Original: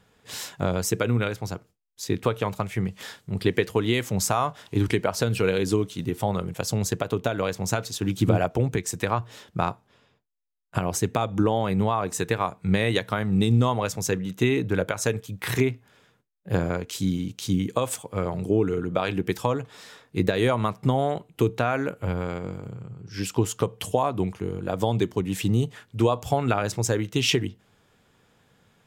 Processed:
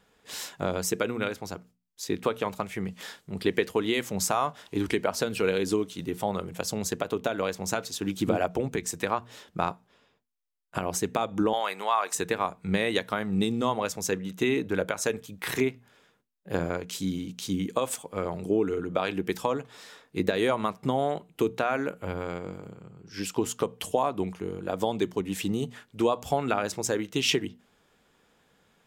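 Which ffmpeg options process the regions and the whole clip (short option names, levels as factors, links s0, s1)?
-filter_complex "[0:a]asettb=1/sr,asplit=3[s0][s1][s2];[s0]atrim=end=11.534[s3];[s1]atrim=start=11.53:end=12.15,asetpts=PTS-STARTPTS,afade=t=in:d=0.004:c=qsin,afade=t=out:st=0.616:d=0.004:c=qsin,highpass=930,acontrast=56[s4];[s2]atrim=start=12.146[s5];[s3][s4]acrossfade=d=0.004:c1=hsin:c2=qsin[s6];[s6][s5]acrossfade=d=0.004:c1=qsin:c2=hsin,equalizer=f=110:t=o:w=0.58:g=-13.5,bandreject=f=60:t=h:w=6,bandreject=f=120:t=h:w=6,bandreject=f=180:t=h:w=6,bandreject=f=240:t=h:w=6,volume=0.794"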